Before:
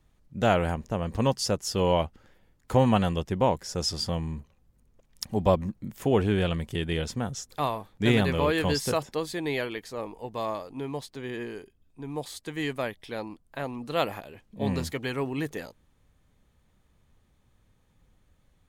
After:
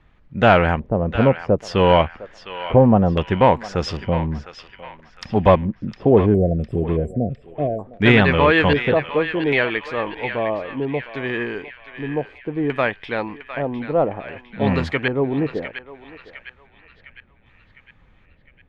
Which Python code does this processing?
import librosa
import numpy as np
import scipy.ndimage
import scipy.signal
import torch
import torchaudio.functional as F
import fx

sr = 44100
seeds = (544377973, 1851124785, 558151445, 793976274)

p1 = fx.peak_eq(x, sr, hz=1700.0, db=5.0, octaves=2.0)
p2 = fx.fold_sine(p1, sr, drive_db=7, ceiling_db=-5.0)
p3 = p1 + (p2 * 10.0 ** (-11.0 / 20.0))
p4 = fx.filter_lfo_lowpass(p3, sr, shape='square', hz=0.63, low_hz=590.0, high_hz=2600.0, q=1.1)
p5 = fx.brickwall_bandstop(p4, sr, low_hz=740.0, high_hz=7300.0, at=(6.34, 7.79))
p6 = p5 + fx.echo_banded(p5, sr, ms=707, feedback_pct=55, hz=2300.0, wet_db=-8.5, dry=0)
y = p6 * 10.0 ** (2.5 / 20.0)